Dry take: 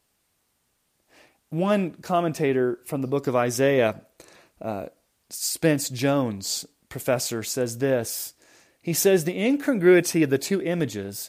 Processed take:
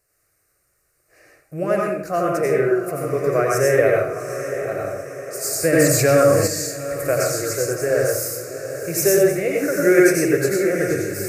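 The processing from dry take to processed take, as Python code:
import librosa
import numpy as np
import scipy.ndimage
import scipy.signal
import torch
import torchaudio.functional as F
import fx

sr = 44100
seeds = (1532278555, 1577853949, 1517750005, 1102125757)

y = fx.fixed_phaser(x, sr, hz=900.0, stages=6)
y = fx.echo_diffused(y, sr, ms=778, feedback_pct=51, wet_db=-10.0)
y = fx.rev_plate(y, sr, seeds[0], rt60_s=0.55, hf_ratio=0.75, predelay_ms=75, drr_db=-2.0)
y = fx.env_flatten(y, sr, amount_pct=50, at=(5.72, 6.46), fade=0.02)
y = y * librosa.db_to_amplitude(3.0)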